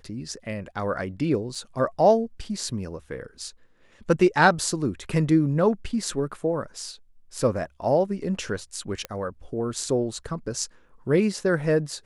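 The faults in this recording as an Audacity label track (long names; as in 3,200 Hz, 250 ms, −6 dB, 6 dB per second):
1.550000	1.550000	drop-out 3.9 ms
9.050000	9.050000	click −15 dBFS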